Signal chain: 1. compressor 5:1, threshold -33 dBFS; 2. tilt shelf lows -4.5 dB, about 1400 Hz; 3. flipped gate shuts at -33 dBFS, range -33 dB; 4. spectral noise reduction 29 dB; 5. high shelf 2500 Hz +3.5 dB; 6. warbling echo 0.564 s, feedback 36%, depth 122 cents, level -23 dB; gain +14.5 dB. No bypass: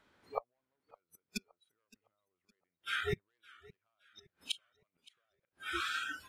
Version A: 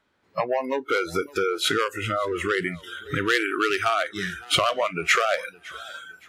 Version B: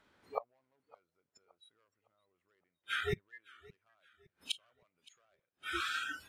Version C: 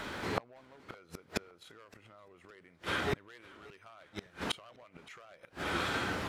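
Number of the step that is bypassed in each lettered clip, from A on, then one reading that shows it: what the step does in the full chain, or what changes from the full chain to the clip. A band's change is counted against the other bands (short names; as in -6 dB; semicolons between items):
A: 3, crest factor change -8.0 dB; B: 1, 250 Hz band -1.5 dB; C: 4, 250 Hz band +6.0 dB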